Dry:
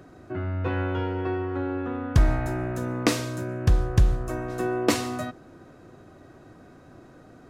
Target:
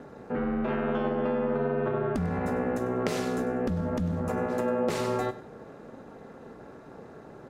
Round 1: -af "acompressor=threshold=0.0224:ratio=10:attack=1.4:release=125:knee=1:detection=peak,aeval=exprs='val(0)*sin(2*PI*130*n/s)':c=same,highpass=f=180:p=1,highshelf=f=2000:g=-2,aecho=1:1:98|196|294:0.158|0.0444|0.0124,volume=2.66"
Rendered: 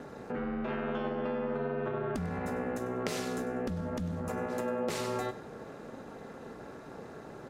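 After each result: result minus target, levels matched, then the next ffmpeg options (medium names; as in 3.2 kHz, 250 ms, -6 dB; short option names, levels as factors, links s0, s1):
compression: peak gain reduction +6.5 dB; 4 kHz band +5.0 dB
-af "acompressor=threshold=0.0501:ratio=10:attack=1.4:release=125:knee=1:detection=peak,aeval=exprs='val(0)*sin(2*PI*130*n/s)':c=same,highpass=f=180:p=1,highshelf=f=2000:g=-2,aecho=1:1:98|196|294:0.158|0.0444|0.0124,volume=2.66"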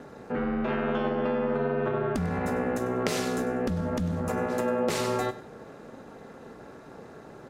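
4 kHz band +4.5 dB
-af "acompressor=threshold=0.0501:ratio=10:attack=1.4:release=125:knee=1:detection=peak,aeval=exprs='val(0)*sin(2*PI*130*n/s)':c=same,highpass=f=180:p=1,highshelf=f=2000:g=-8.5,aecho=1:1:98|196|294:0.158|0.0444|0.0124,volume=2.66"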